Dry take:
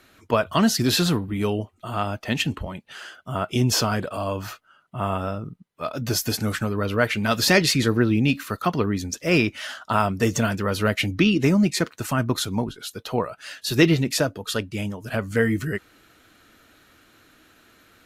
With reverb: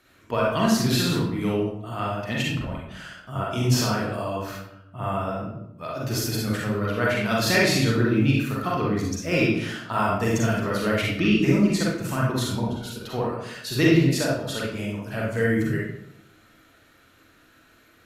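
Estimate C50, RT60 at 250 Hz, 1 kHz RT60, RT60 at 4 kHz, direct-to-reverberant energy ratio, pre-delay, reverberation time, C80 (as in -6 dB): -0.5 dB, 1.0 s, 0.75 s, 0.50 s, -5.0 dB, 36 ms, 0.80 s, 4.5 dB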